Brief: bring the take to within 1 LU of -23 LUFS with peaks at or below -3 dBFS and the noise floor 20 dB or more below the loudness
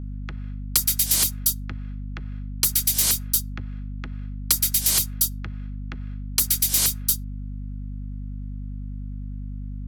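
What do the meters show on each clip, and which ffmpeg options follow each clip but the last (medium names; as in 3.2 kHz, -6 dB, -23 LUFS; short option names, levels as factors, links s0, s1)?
hum 50 Hz; highest harmonic 250 Hz; hum level -30 dBFS; loudness -20.5 LUFS; peak level -4.5 dBFS; loudness target -23.0 LUFS
-> -af "bandreject=f=50:t=h:w=4,bandreject=f=100:t=h:w=4,bandreject=f=150:t=h:w=4,bandreject=f=200:t=h:w=4,bandreject=f=250:t=h:w=4"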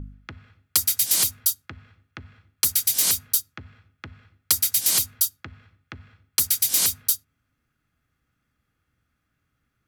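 hum not found; loudness -20.5 LUFS; peak level -4.5 dBFS; loudness target -23.0 LUFS
-> -af "volume=0.75"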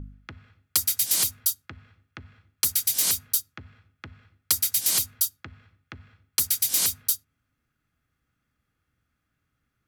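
loudness -23.0 LUFS; peak level -7.0 dBFS; noise floor -79 dBFS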